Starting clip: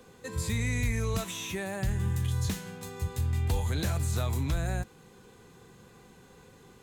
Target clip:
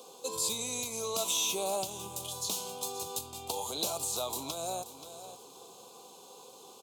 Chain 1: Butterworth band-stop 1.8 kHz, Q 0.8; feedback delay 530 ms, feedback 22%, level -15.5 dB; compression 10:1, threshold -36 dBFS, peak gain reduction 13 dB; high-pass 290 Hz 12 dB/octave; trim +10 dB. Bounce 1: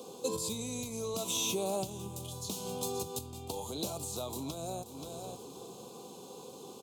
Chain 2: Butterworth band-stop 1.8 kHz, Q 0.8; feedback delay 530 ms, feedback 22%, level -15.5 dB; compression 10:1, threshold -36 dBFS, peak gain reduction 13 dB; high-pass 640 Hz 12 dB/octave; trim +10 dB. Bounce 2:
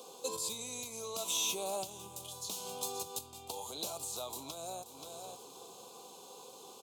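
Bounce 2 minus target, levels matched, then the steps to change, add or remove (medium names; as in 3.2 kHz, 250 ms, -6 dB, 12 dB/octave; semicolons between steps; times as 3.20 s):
compression: peak gain reduction +6.5 dB
change: compression 10:1, threshold -28.5 dBFS, peak gain reduction 6 dB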